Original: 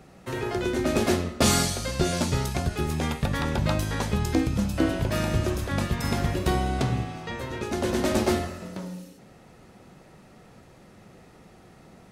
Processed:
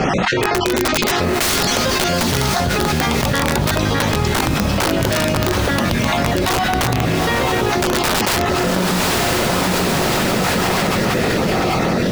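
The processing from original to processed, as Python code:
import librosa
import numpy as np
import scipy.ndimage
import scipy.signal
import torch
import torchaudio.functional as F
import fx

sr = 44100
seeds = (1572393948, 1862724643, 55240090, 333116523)

p1 = fx.spec_dropout(x, sr, seeds[0], share_pct=24)
p2 = scipy.signal.sosfilt(scipy.signal.butter(4, 5800.0, 'lowpass', fs=sr, output='sos'), p1)
p3 = fx.low_shelf(p2, sr, hz=110.0, db=-8.5)
p4 = fx.hum_notches(p3, sr, base_hz=50, count=8)
p5 = fx.rider(p4, sr, range_db=10, speed_s=2.0)
p6 = p4 + F.gain(torch.from_numpy(p5), 0.0).numpy()
p7 = (np.mod(10.0 ** (13.5 / 20.0) * p6 + 1.0, 2.0) - 1.0) / 10.0 ** (13.5 / 20.0)
p8 = fx.echo_diffused(p7, sr, ms=857, feedback_pct=41, wet_db=-10.5)
y = fx.env_flatten(p8, sr, amount_pct=100)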